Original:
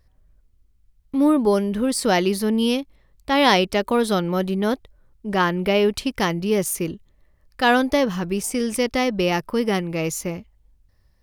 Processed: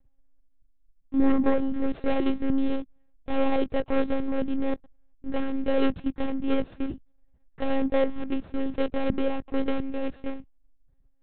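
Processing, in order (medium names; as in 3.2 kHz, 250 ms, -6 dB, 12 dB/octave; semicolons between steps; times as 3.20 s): median filter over 41 samples; monotone LPC vocoder at 8 kHz 270 Hz; trim -1.5 dB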